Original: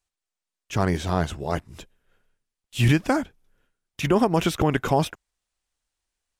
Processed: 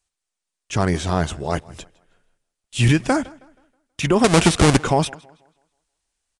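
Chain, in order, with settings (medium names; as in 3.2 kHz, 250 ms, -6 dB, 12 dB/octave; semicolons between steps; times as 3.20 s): 4.24–4.78 s: square wave that keeps the level; treble shelf 7.4 kHz +8.5 dB; in parallel at -7 dB: hard clipper -15 dBFS, distortion -10 dB; on the sum: resampled via 22.05 kHz; tape echo 161 ms, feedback 38%, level -22 dB, low-pass 5.2 kHz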